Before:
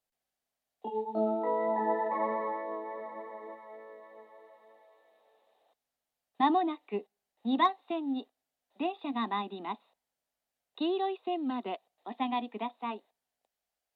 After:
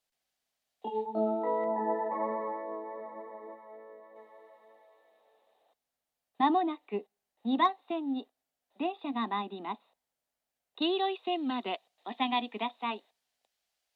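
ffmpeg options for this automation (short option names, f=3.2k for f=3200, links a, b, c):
-af "asetnsamples=n=441:p=0,asendcmd='1.06 equalizer g -1;1.64 equalizer g -9;4.16 equalizer g -0.5;10.82 equalizer g 9',equalizer=f=3.9k:t=o:w=2.5:g=6.5"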